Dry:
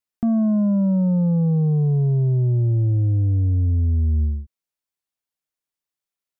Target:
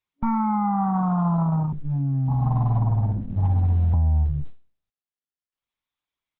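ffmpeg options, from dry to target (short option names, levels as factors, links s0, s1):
-filter_complex "[0:a]equalizer=f=590:w=2:g=-10.5,bandreject=f=50:t=h:w=6,bandreject=f=100:t=h:w=6,bandreject=f=150:t=h:w=6,asettb=1/sr,asplit=3[s0][s1][s2];[s0]atrim=end=1.724[s3];[s1]atrim=start=1.72:end=3.94,asetpts=PTS-STARTPTS,afade=t=in:d=0.004:c=qsin,afade=t=out:st=2.216:d=0.004:c=qsin,acrossover=split=180[s4][s5];[s5]adelay=560[s6];[s4][s6]amix=inputs=2:normalize=0,atrim=end_sample=97902[s7];[s2]atrim=start=3.936[s8];[s3][s7]acrossfade=d=0.004:c1=hsin:c2=qsin[s9];[s9][s8]acrossfade=d=0.004:c1=qsin:c2=hsin,aeval=exprs='0.211*(cos(1*acos(clip(val(0)/0.211,-1,1)))-cos(1*PI/2))+0.00266*(cos(3*acos(clip(val(0)/0.211,-1,1)))-cos(3*PI/2))+0.075*(cos(6*acos(clip(val(0)/0.211,-1,1)))-cos(6*PI/2))+0.0266*(cos(7*acos(clip(val(0)/0.211,-1,1)))-cos(7*PI/2))':c=same,acompressor=mode=upward:threshold=0.0158:ratio=2.5,aecho=1:1:0.9:0.84,afftdn=nr=25:nf=-31,alimiter=limit=0.168:level=0:latency=1:release=11,afftfilt=real='re*(1-between(b*sr/4096,280,590))':imag='im*(1-between(b*sr/4096,280,590))':win_size=4096:overlap=0.75,equalizer=f=200:t=o:w=0.33:g=-4,equalizer=f=400:t=o:w=0.33:g=-3,equalizer=f=800:t=o:w=0.33:g=7,aresample=22050,aresample=44100,volume=1.33" -ar 48000 -c:a libopus -b:a 8k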